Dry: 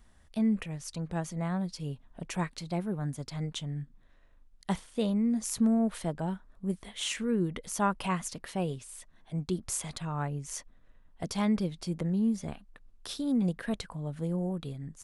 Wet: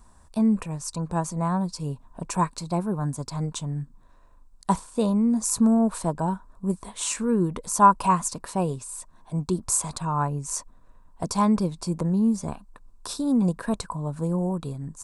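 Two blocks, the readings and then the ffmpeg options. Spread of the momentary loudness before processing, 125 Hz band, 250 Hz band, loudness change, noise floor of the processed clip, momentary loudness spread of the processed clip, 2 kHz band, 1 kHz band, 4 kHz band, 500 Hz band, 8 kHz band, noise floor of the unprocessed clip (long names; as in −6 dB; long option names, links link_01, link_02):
12 LU, +6.0 dB, +6.0 dB, +7.0 dB, −54 dBFS, 13 LU, +1.5 dB, +13.5 dB, +1.5 dB, +6.5 dB, +9.5 dB, −60 dBFS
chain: -af "equalizer=frequency=1000:width_type=o:width=0.33:gain=12,equalizer=frequency=2000:width_type=o:width=0.33:gain=-12,equalizer=frequency=3150:width_type=o:width=0.33:gain=-12,equalizer=frequency=8000:width_type=o:width=0.33:gain=8,volume=6dB"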